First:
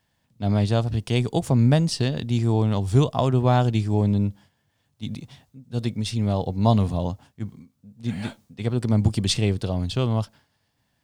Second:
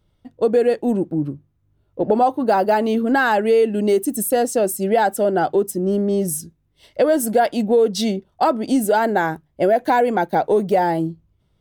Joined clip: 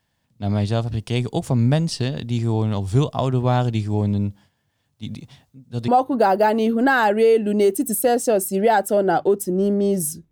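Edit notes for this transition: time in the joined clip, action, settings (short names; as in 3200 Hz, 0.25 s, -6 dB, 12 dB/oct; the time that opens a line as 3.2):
first
5.88 switch to second from 2.16 s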